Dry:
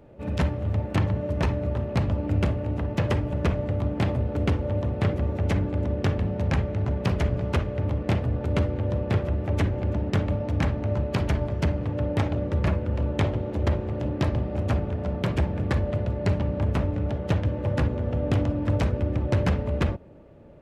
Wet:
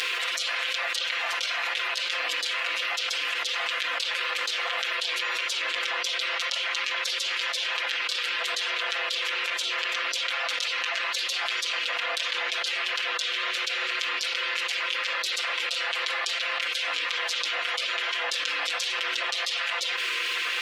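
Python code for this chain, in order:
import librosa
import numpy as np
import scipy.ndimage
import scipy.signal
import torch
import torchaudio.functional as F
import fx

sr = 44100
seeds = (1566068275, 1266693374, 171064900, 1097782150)

y = scipy.signal.sosfilt(scipy.signal.ellip(4, 1.0, 80, 750.0, 'highpass', fs=sr, output='sos'), x)
y = fx.spec_gate(y, sr, threshold_db=-15, keep='weak')
y = fx.peak_eq(y, sr, hz=3700.0, db=10.5, octaves=2.2)
y = y + 0.93 * np.pad(y, (int(5.8 * sr / 1000.0), 0))[:len(y)]
y = fx.env_flatten(y, sr, amount_pct=100)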